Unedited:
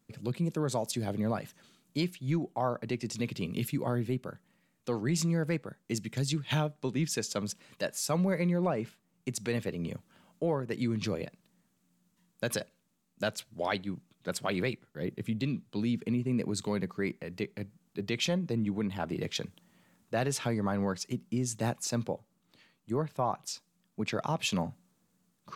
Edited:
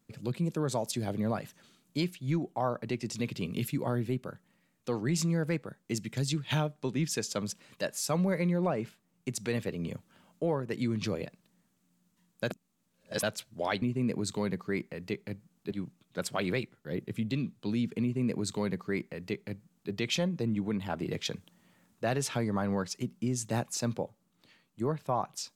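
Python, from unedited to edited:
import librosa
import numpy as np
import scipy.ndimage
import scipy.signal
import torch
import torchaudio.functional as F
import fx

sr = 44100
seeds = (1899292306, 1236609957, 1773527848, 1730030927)

y = fx.edit(x, sr, fx.reverse_span(start_s=12.51, length_s=0.72),
    fx.duplicate(start_s=16.12, length_s=1.9, to_s=13.82), tone=tone)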